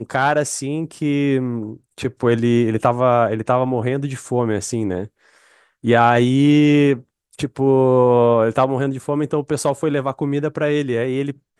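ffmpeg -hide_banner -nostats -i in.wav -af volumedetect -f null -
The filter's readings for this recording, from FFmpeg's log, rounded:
mean_volume: -18.0 dB
max_volume: -1.1 dB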